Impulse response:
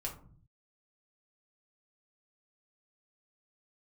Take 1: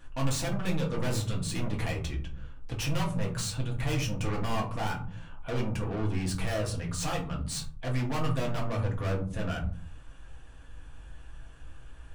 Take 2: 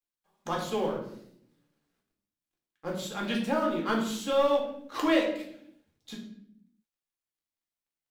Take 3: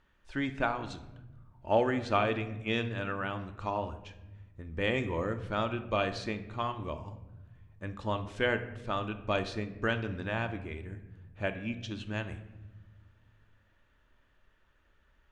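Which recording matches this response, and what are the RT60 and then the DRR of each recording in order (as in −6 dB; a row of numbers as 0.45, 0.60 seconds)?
1; 0.45 s, 0.70 s, non-exponential decay; −2.5, −2.0, 8.0 decibels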